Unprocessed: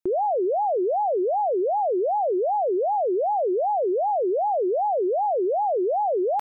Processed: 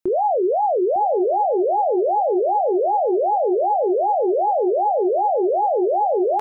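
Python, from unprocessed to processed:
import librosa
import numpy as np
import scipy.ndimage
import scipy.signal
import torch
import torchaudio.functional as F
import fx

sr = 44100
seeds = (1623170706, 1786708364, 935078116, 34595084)

y = fx.doubler(x, sr, ms=25.0, db=-11)
y = y + 10.0 ** (-14.5 / 20.0) * np.pad(y, (int(904 * sr / 1000.0), 0))[:len(y)]
y = F.gain(torch.from_numpy(y), 3.5).numpy()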